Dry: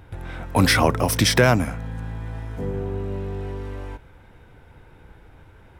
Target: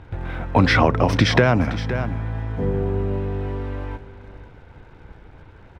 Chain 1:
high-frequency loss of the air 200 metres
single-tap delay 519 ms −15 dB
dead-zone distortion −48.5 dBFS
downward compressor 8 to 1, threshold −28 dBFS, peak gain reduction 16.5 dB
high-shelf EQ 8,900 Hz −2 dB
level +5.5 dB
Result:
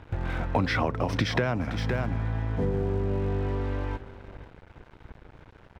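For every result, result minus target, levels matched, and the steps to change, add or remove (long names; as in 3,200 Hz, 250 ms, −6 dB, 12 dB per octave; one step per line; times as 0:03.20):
downward compressor: peak gain reduction +10.5 dB; dead-zone distortion: distortion +11 dB
change: downward compressor 8 to 1, threshold −16 dBFS, peak gain reduction 6 dB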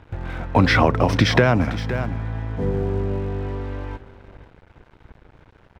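dead-zone distortion: distortion +11 dB
change: dead-zone distortion −60 dBFS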